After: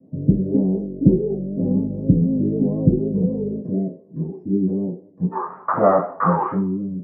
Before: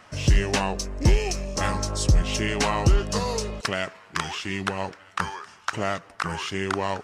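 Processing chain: inverse Chebyshev low-pass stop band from 1200 Hz, stop band 60 dB, from 5.31 s stop band from 3600 Hz, from 6.53 s stop band from 810 Hz; reverb RT60 0.45 s, pre-delay 3 ms, DRR -8 dB; vibrato 4 Hz 64 cents

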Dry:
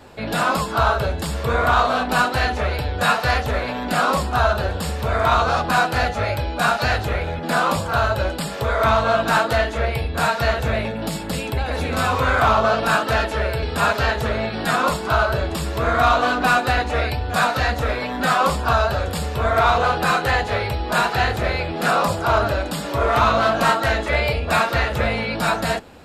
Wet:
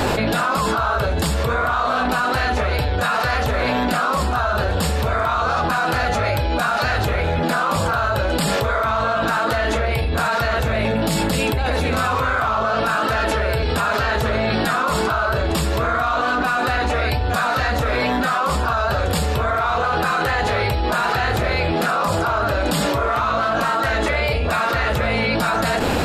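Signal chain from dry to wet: dynamic EQ 1300 Hz, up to +5 dB, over -29 dBFS, Q 2.1; fast leveller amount 100%; gain -8.5 dB

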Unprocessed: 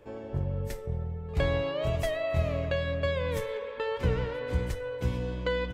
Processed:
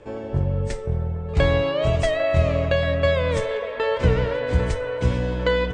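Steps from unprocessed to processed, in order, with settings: steep low-pass 9100 Hz 72 dB/oct; band-limited delay 0.798 s, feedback 55%, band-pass 1000 Hz, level -9 dB; gain +8.5 dB

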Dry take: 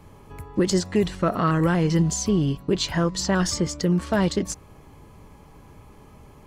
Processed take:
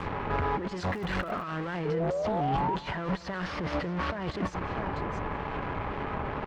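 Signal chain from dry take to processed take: 3.42–4.19 CVSD 32 kbps; low-pass opened by the level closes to 1800 Hz, open at -19.5 dBFS; in parallel at -12 dB: fuzz box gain 45 dB, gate -52 dBFS; on the sum: low shelf 450 Hz -11 dB; on a send: echo 0.648 s -20.5 dB; on the sum: negative-ratio compressor -31 dBFS, ratio -1; 1.85–2.76 painted sound rise 430–980 Hz -30 dBFS; treble ducked by the level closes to 1900 Hz, closed at -28 dBFS; 0.89–1.41 crackle 150/s -> 52/s -40 dBFS; outdoor echo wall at 33 m, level -17 dB; 2–2.41 Doppler distortion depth 0.55 ms

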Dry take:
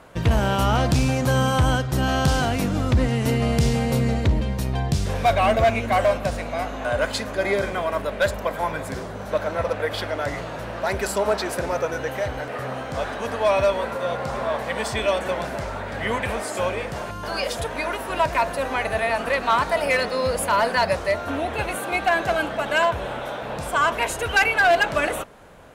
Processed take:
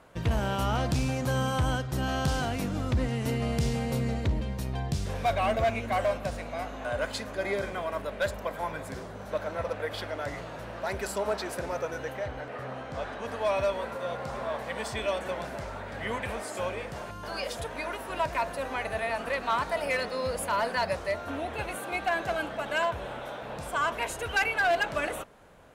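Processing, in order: 12.12–13.27 high shelf 5600 Hz -> 8500 Hz -10.5 dB; gain -8 dB

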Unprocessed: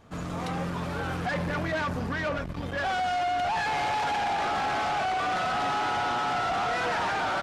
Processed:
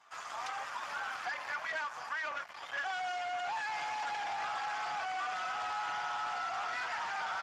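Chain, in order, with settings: inverse Chebyshev high-pass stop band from 390 Hz, stop band 40 dB; compressor 20:1, threshold -33 dBFS, peak gain reduction 7 dB; Speex 15 kbps 32000 Hz

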